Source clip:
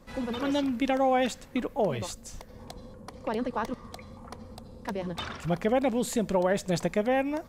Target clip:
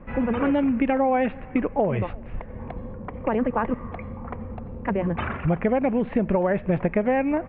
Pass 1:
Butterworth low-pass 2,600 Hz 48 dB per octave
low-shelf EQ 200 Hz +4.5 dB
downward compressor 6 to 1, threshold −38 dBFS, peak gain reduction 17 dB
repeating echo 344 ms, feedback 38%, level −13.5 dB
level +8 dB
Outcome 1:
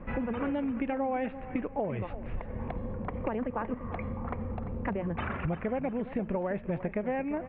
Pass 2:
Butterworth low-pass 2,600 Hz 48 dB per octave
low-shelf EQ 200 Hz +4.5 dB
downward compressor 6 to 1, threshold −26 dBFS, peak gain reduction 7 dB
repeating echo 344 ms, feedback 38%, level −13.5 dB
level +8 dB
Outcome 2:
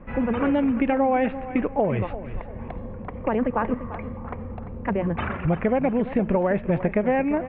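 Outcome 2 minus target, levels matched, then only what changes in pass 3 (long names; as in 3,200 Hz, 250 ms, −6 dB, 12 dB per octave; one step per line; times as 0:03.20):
echo-to-direct +11.5 dB
change: repeating echo 344 ms, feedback 38%, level −25 dB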